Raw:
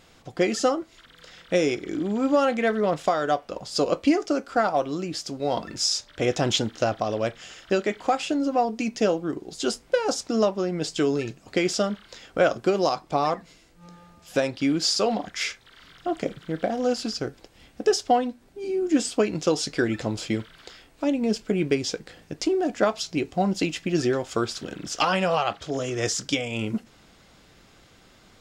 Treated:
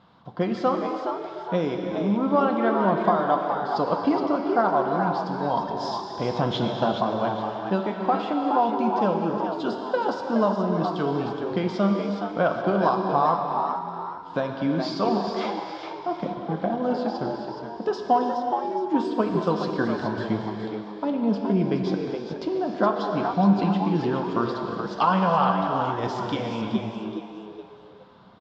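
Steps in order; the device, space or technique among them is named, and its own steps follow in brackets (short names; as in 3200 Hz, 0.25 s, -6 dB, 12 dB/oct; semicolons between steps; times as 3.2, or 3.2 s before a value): fifteen-band EQ 400 Hz -9 dB, 2500 Hz -12 dB, 6300 Hz -5 dB; frequency-shifting delay pedal into a guitar cabinet (frequency-shifting echo 0.42 s, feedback 34%, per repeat +100 Hz, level -7.5 dB; speaker cabinet 97–3800 Hz, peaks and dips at 190 Hz +6 dB, 380 Hz +3 dB, 1000 Hz +10 dB, 1900 Hz -5 dB); non-linear reverb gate 0.44 s flat, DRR 3 dB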